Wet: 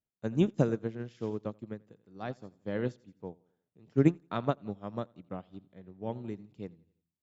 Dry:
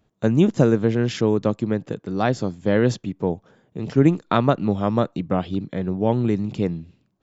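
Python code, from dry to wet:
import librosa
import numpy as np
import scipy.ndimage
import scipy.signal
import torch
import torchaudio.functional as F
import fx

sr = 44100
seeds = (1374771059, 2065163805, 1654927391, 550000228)

y = fx.echo_feedback(x, sr, ms=85, feedback_pct=47, wet_db=-14.5)
y = fx.upward_expand(y, sr, threshold_db=-27.0, expansion=2.5)
y = y * librosa.db_to_amplitude(-6.5)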